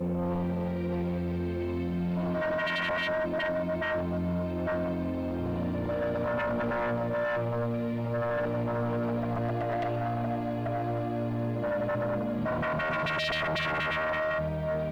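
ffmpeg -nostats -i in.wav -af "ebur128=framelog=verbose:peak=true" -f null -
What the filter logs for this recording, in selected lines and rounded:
Integrated loudness:
  I:         -30.3 LUFS
  Threshold: -40.3 LUFS
Loudness range:
  LRA:         1.5 LU
  Threshold: -50.4 LUFS
  LRA low:   -31.0 LUFS
  LRA high:  -29.4 LUFS
True peak:
  Peak:      -26.1 dBFS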